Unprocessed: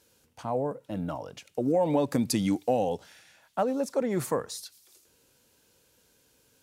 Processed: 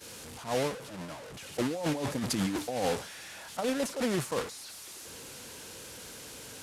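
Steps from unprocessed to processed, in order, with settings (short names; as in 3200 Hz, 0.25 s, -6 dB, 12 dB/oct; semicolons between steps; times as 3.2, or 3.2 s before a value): delta modulation 64 kbps, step -25.5 dBFS; HPF 46 Hz 6 dB/oct; expander -21 dBFS; negative-ratio compressor -32 dBFS, ratio -1; gain +2 dB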